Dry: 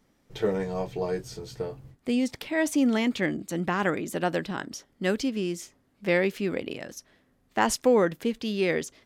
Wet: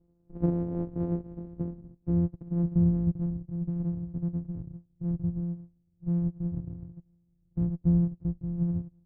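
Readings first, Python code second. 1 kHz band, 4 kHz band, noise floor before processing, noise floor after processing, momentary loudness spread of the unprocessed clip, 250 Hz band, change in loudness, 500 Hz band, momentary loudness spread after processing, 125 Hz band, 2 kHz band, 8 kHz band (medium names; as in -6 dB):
under -20 dB, under -40 dB, -68 dBFS, -69 dBFS, 14 LU, -1.0 dB, -2.5 dB, -14.5 dB, 14 LU, +9.5 dB, under -35 dB, under -40 dB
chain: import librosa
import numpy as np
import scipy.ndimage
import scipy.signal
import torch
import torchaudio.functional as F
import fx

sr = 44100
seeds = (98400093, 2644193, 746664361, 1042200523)

y = np.r_[np.sort(x[:len(x) // 256 * 256].reshape(-1, 256), axis=1).ravel(), x[len(x) // 256 * 256:]]
y = fx.filter_sweep_lowpass(y, sr, from_hz=360.0, to_hz=160.0, start_s=1.2, end_s=3.47, q=1.1)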